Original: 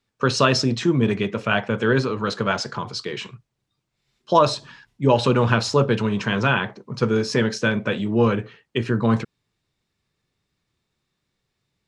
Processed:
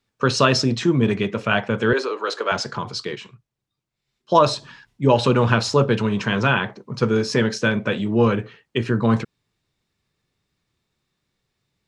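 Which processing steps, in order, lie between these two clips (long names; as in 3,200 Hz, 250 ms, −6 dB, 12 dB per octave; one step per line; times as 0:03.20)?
0:01.93–0:02.52: Butterworth high-pass 330 Hz 36 dB per octave
0:03.15–0:04.35: expander for the loud parts 1.5 to 1, over −30 dBFS
level +1 dB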